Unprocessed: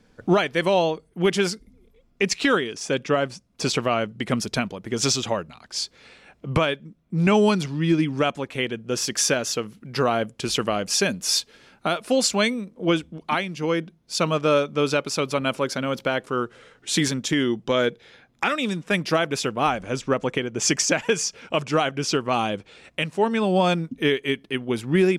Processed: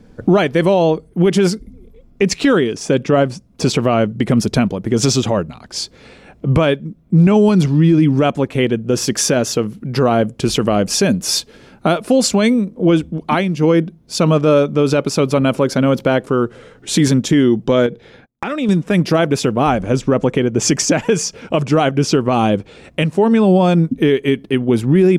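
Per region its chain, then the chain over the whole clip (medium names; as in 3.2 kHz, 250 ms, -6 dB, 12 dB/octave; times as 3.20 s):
17.86–18.69 s: gate -54 dBFS, range -30 dB + treble shelf 5.7 kHz -6 dB + compression 4:1, threshold -27 dBFS
whole clip: tilt shelf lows +6.5 dB, about 780 Hz; peak limiter -13.5 dBFS; treble shelf 8.5 kHz +5 dB; trim +9 dB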